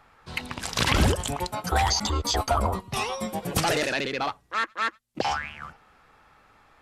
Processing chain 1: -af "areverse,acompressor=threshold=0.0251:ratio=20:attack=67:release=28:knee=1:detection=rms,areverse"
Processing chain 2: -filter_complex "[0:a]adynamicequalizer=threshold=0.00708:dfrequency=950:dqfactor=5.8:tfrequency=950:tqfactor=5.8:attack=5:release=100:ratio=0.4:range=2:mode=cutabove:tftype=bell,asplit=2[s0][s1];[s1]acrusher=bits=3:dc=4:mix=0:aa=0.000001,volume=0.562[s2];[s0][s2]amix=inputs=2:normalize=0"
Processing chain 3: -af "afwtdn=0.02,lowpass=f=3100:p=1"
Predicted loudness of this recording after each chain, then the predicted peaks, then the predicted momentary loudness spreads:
-31.0 LUFS, -24.5 LUFS, -28.0 LUFS; -14.0 dBFS, -4.0 dBFS, -11.0 dBFS; 6 LU, 10 LU, 11 LU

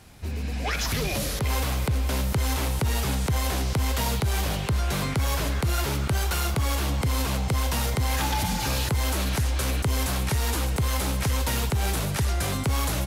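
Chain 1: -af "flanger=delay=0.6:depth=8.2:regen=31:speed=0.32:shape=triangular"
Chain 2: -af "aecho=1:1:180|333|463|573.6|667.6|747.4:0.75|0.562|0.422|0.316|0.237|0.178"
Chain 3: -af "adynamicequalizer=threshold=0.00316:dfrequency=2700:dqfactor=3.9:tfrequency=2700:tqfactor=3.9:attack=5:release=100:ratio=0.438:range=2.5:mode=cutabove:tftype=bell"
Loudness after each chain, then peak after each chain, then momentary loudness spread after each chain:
-30.0 LUFS, -23.0 LUFS, -26.5 LUFS; -19.0 dBFS, -10.0 dBFS, -16.5 dBFS; 3 LU, 2 LU, 1 LU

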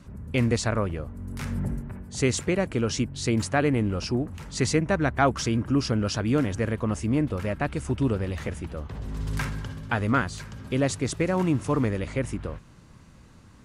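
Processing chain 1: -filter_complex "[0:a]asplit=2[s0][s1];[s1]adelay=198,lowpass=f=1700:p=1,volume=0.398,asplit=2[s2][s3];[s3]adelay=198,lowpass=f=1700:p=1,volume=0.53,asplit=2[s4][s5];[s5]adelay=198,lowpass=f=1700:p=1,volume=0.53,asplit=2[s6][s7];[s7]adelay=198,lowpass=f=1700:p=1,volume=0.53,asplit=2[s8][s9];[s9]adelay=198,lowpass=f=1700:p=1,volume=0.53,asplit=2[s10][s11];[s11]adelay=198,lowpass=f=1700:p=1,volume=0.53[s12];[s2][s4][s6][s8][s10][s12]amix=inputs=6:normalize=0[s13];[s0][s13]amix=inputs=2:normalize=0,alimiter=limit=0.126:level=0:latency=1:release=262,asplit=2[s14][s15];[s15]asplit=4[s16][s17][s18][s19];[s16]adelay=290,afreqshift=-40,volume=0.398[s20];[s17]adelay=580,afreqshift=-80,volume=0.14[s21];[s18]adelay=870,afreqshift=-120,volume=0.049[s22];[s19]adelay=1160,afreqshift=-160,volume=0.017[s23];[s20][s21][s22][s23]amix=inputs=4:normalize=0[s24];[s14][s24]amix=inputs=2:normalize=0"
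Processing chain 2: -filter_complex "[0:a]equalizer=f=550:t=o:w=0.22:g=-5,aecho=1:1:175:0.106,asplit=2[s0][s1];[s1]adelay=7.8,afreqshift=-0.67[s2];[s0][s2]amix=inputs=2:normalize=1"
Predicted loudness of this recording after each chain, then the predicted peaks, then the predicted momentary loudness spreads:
-29.0 LUFS, -30.0 LUFS; -15.5 dBFS, -12.0 dBFS; 6 LU, 12 LU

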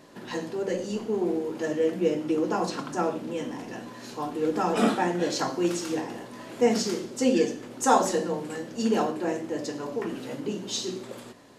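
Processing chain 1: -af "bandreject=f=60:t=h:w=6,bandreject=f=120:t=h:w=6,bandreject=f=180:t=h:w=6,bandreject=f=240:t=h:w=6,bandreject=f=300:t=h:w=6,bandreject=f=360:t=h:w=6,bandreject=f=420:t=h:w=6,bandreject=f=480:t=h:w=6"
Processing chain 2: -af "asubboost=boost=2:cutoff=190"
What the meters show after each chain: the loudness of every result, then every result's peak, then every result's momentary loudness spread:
-28.5 LUFS, -28.5 LUFS; -6.5 dBFS, -7.5 dBFS; 12 LU, 12 LU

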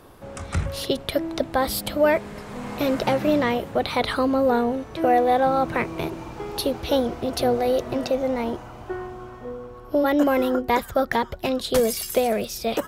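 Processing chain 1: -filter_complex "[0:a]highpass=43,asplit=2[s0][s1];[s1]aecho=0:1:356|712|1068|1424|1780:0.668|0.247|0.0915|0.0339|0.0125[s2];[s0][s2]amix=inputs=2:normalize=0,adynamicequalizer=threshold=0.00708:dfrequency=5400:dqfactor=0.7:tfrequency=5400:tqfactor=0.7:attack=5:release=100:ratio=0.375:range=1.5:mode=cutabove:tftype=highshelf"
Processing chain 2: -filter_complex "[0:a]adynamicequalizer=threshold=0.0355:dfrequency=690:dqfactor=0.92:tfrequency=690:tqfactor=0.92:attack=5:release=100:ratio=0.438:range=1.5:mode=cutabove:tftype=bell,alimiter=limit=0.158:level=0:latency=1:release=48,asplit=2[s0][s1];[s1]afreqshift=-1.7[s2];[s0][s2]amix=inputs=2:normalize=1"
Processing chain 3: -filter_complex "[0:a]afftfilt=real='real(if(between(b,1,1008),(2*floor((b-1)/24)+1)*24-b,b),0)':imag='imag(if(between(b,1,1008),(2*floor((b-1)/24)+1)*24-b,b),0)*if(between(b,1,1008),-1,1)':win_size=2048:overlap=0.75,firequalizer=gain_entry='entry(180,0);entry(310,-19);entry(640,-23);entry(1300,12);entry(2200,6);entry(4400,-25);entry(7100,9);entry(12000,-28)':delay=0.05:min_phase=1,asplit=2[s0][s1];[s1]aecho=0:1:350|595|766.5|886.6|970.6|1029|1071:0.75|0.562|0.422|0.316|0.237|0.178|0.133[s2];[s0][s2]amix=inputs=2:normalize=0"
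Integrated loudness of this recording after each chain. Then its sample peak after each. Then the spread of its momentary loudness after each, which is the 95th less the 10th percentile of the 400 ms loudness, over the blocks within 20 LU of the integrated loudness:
-22.0 LUFS, -29.0 LUFS, -21.0 LUFS; -6.5 dBFS, -15.5 dBFS, -1.0 dBFS; 10 LU, 10 LU, 10 LU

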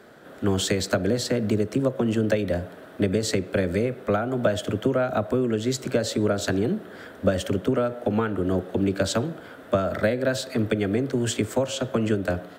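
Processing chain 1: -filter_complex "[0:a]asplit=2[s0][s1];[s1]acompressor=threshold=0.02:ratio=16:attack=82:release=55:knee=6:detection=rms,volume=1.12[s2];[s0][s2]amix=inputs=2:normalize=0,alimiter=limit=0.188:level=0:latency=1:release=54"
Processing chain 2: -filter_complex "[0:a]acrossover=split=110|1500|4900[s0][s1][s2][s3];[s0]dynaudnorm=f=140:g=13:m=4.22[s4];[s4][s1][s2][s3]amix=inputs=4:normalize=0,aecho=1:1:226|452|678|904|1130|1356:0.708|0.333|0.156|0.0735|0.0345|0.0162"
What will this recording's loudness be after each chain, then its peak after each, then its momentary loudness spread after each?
-25.0 LUFS, -21.0 LUFS; -14.5 dBFS, -5.0 dBFS; 3 LU, 3 LU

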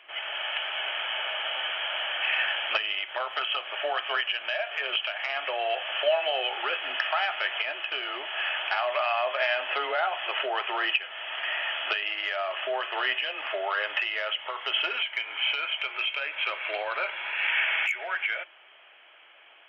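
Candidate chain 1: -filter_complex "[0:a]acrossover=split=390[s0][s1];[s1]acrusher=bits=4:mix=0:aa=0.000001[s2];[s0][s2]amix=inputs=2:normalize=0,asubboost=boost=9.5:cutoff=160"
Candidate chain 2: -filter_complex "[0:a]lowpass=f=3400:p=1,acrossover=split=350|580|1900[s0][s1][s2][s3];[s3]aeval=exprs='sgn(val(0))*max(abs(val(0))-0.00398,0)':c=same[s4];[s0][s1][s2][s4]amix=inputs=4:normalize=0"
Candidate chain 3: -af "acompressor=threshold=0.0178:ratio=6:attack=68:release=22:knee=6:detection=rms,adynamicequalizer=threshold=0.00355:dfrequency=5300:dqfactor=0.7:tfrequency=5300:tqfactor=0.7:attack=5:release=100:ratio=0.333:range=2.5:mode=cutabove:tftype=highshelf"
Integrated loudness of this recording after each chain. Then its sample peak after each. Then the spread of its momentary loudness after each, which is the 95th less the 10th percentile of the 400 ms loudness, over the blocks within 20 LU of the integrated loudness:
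-27.5 LUFS, -30.0 LUFS, -31.5 LUFS; -11.0 dBFS, -13.0 dBFS, -16.5 dBFS; 4 LU, 6 LU, 2 LU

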